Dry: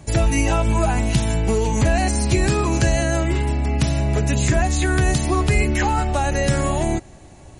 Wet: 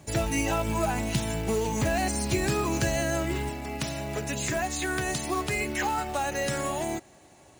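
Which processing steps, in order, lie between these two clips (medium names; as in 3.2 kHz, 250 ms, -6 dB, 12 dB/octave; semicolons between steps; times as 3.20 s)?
high-pass 150 Hz 6 dB/octave, from 3.49 s 380 Hz; short-mantissa float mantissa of 2-bit; trim -5.5 dB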